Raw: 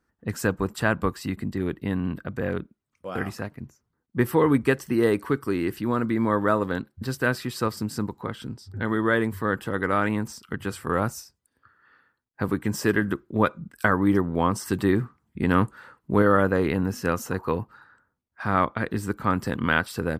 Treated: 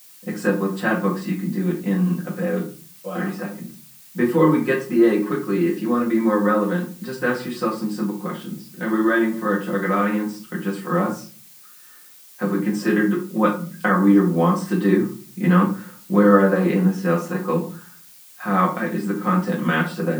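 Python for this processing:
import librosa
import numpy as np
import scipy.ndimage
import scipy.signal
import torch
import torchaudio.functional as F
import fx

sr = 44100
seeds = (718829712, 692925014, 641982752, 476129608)

y = scipy.signal.sosfilt(scipy.signal.cheby1(4, 1.0, 160.0, 'highpass', fs=sr, output='sos'), x)
y = fx.high_shelf(y, sr, hz=5800.0, db=-11.0)
y = y + 0.97 * np.pad(y, (int(5.6 * sr / 1000.0), 0))[:len(y)]
y = fx.dmg_noise_colour(y, sr, seeds[0], colour='blue', level_db=-47.0)
y = fx.room_shoebox(y, sr, seeds[1], volume_m3=230.0, walls='furnished', distance_m=2.0)
y = F.gain(torch.from_numpy(y), -2.5).numpy()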